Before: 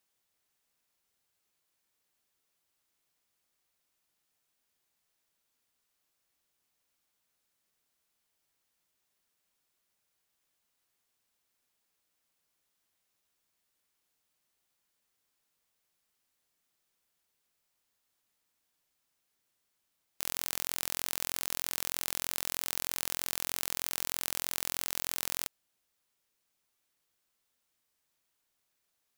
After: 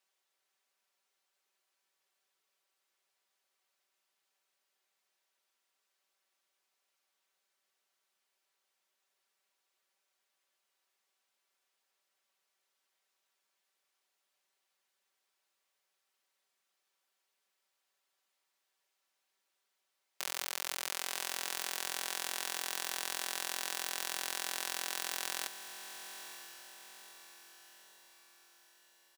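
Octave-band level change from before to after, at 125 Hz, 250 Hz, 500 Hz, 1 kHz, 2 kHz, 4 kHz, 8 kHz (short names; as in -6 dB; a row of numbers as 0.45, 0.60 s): under -15 dB, -6.0 dB, -0.5 dB, +2.5 dB, +2.0 dB, +0.5 dB, -2.5 dB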